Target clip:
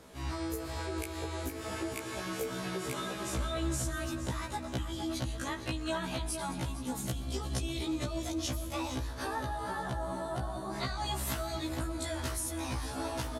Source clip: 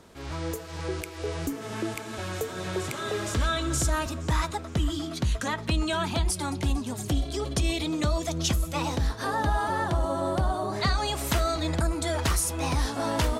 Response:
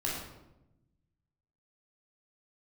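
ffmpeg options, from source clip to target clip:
-filter_complex "[0:a]equalizer=f=11k:t=o:w=0.37:g=6,acompressor=threshold=-32dB:ratio=6,asplit=2[a][b];[b]adelay=460.6,volume=-7dB,highshelf=f=4k:g=-10.4[c];[a][c]amix=inputs=2:normalize=0,asplit=2[d][e];[1:a]atrim=start_sample=2205,asetrate=37044,aresample=44100,adelay=120[f];[e][f]afir=irnorm=-1:irlink=0,volume=-20dB[g];[d][g]amix=inputs=2:normalize=0,afftfilt=real='re*1.73*eq(mod(b,3),0)':imag='im*1.73*eq(mod(b,3),0)':win_size=2048:overlap=0.75,volume=1.5dB"

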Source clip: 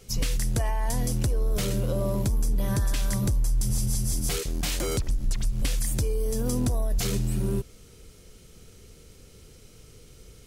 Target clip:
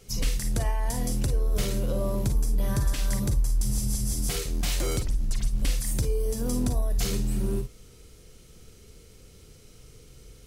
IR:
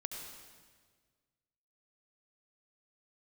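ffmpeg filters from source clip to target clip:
-filter_complex "[1:a]atrim=start_sample=2205,atrim=end_sample=4410,asetrate=74970,aresample=44100[a];[0:a][a]afir=irnorm=-1:irlink=0,volume=6dB"

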